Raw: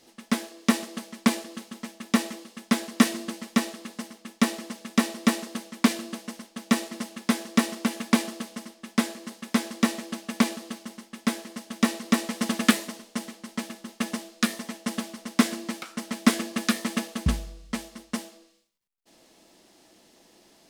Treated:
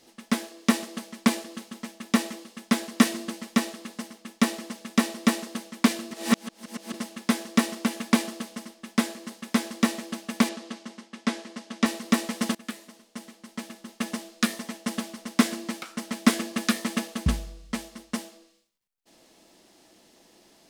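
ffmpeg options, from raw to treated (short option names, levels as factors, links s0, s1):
-filter_complex "[0:a]asettb=1/sr,asplit=3[s0][s1][s2];[s0]atrim=end=10.494[s3];[s1]atrim=start=10.49:end=11.86,asetpts=PTS-STARTPTS,afade=t=in:d=0.004:c=qsin,afade=t=out:st=1.366:d=0.004:c=qsin,highpass=170,lowpass=6700[s4];[s2]atrim=start=11.856[s5];[s3][s4]acrossfade=d=0.004:c1=hsin:c2=qsin[s6];[s6][s5]acrossfade=d=0.004:c1=qsin:c2=hsin,asplit=4[s7][s8][s9][s10];[s7]atrim=end=6.112[s11];[s8]atrim=start=6.108:end=6.942,asetpts=PTS-STARTPTS,areverse[s12];[s9]atrim=start=6.938:end=12.55,asetpts=PTS-STARTPTS,afade=t=out:st=5.608:d=0.004:c=hsin:silence=0.0749894[s13];[s10]atrim=start=12.55,asetpts=PTS-STARTPTS,afade=t=in:d=1.76:silence=0.0749894[s14];[s11][s12]acrossfade=d=0.004:c1=hsin:c2=hsin[s15];[s13][s14]concat=n=2:v=0:a=1[s16];[s15][s16]acrossfade=d=0.004:c1=hsin:c2=hsin"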